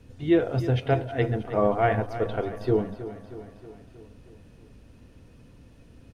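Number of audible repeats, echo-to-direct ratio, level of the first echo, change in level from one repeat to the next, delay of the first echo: 5, −11.5 dB, −13.5 dB, −4.5 dB, 316 ms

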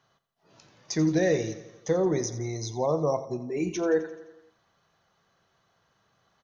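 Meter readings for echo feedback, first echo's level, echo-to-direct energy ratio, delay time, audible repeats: 59%, −14.5 dB, −12.5 dB, 86 ms, 5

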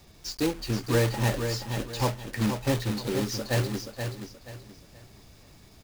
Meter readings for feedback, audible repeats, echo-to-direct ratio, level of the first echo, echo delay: 31%, 3, −6.5 dB, −7.0 dB, 478 ms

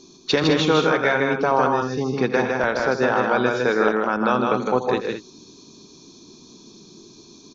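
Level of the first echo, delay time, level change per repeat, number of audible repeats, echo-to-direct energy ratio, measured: −13.0 dB, 83 ms, repeats not evenly spaced, 4, −2.0 dB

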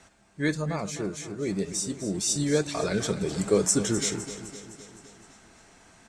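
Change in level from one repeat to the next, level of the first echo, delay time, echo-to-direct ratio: −4.5 dB, −13.0 dB, 256 ms, −11.0 dB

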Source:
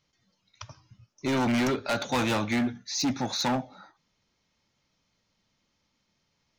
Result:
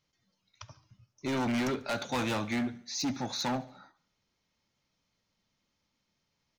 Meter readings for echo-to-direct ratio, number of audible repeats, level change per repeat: −19.5 dB, 3, −6.0 dB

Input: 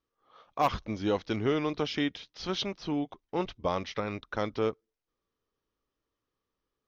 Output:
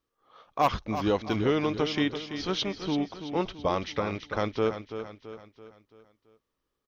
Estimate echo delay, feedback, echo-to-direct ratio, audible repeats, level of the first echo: 334 ms, 47%, −9.0 dB, 4, −10.0 dB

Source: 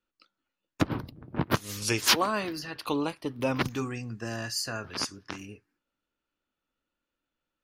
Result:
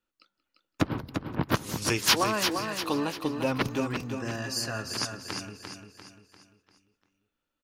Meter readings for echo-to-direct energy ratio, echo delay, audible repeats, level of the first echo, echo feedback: −5.0 dB, 180 ms, 8, −21.0 dB, repeats not evenly spaced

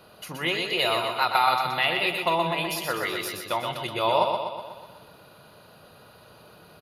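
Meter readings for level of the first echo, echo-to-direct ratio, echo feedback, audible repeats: −5.0 dB, −3.5 dB, 57%, 7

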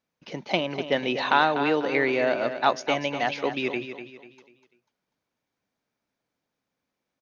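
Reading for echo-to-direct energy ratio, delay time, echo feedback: −9.5 dB, 246 ms, 36%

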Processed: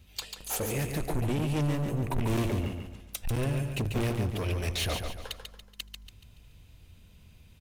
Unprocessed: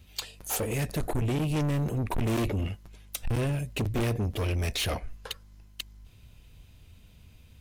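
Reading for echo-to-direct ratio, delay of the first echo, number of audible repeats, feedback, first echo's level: −5.5 dB, 142 ms, 4, 40%, −6.0 dB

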